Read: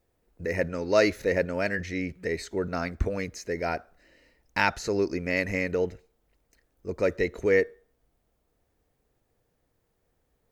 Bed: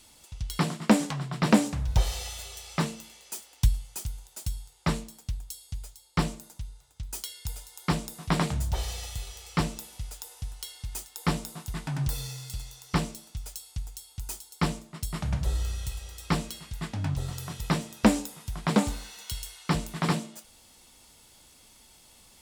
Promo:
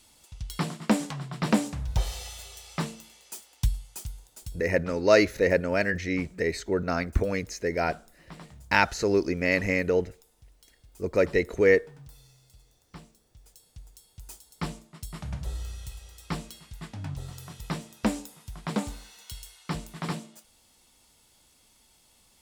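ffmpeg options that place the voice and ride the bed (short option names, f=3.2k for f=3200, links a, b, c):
-filter_complex "[0:a]adelay=4150,volume=2.5dB[a];[1:a]volume=11dB,afade=t=out:st=4.1:d=0.81:silence=0.141254,afade=t=in:st=13.26:d=1.42:silence=0.199526[b];[a][b]amix=inputs=2:normalize=0"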